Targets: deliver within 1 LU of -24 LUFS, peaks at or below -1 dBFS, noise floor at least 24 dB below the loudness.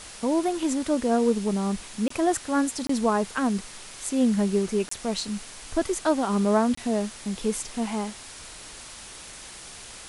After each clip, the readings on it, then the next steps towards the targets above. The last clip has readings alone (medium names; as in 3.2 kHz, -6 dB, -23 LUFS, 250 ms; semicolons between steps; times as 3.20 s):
dropouts 4; longest dropout 24 ms; noise floor -43 dBFS; noise floor target -50 dBFS; loudness -26.0 LUFS; peak level -11.0 dBFS; loudness target -24.0 LUFS
-> interpolate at 2.08/2.87/4.89/6.75 s, 24 ms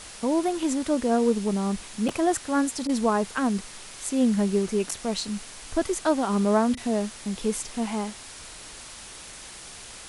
dropouts 0; noise floor -43 dBFS; noise floor target -50 dBFS
-> noise reduction 7 dB, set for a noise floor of -43 dBFS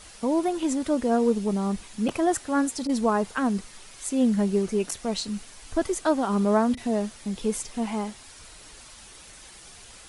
noise floor -48 dBFS; noise floor target -50 dBFS
-> noise reduction 6 dB, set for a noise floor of -48 dBFS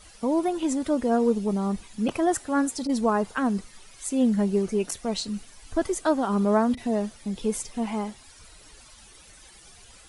noise floor -51 dBFS; loudness -26.0 LUFS; peak level -11.0 dBFS; loudness target -24.0 LUFS
-> trim +2 dB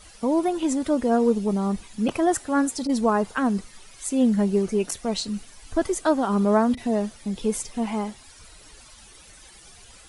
loudness -24.0 LUFS; peak level -9.0 dBFS; noise floor -49 dBFS